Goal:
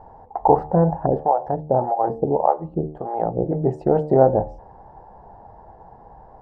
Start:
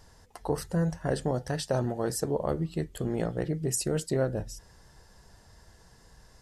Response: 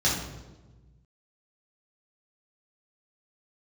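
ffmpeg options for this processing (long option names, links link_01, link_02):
-filter_complex "[0:a]lowpass=frequency=820:width_type=q:width=6.7,equalizer=frequency=480:width=0.37:gain=5.5,bandreject=frequency=75.79:width_type=h:width=4,bandreject=frequency=151.58:width_type=h:width=4,bandreject=frequency=227.37:width_type=h:width=4,bandreject=frequency=303.16:width_type=h:width=4,bandreject=frequency=378.95:width_type=h:width=4,bandreject=frequency=454.74:width_type=h:width=4,bandreject=frequency=530.53:width_type=h:width=4,bandreject=frequency=606.32:width_type=h:width=4,bandreject=frequency=682.11:width_type=h:width=4,bandreject=frequency=757.9:width_type=h:width=4,bandreject=frequency=833.69:width_type=h:width=4,bandreject=frequency=909.48:width_type=h:width=4,bandreject=frequency=985.27:width_type=h:width=4,bandreject=frequency=1061.06:width_type=h:width=4,bandreject=frequency=1136.85:width_type=h:width=4,bandreject=frequency=1212.64:width_type=h:width=4,asettb=1/sr,asplit=3[link_01][link_02][link_03];[link_01]atrim=end=1.064[link_04];[link_02]atrim=start=1.06:end=3.52,asetpts=PTS-STARTPTS,afade=type=in:duration=0.004:curve=qsin,afade=type=out:start_time=2.456:duration=0.004:curve=qsin,acrossover=split=550[link_05][link_06];[link_05]aeval=exprs='val(0)*(1-1/2+1/2*cos(2*PI*1.7*n/s))':channel_layout=same[link_07];[link_06]aeval=exprs='val(0)*(1-1/2-1/2*cos(2*PI*1.7*n/s))':channel_layout=same[link_08];[link_07][link_08]amix=inputs=2:normalize=0[link_09];[link_03]atrim=start=3.516[link_10];[link_04][link_09]acrossfade=duration=0.004:curve1=hsin:curve2=qsin[link_11];[link_11][link_10]acrossfade=duration=0.004:curve1=qsin:curve2=hsin,volume=5dB"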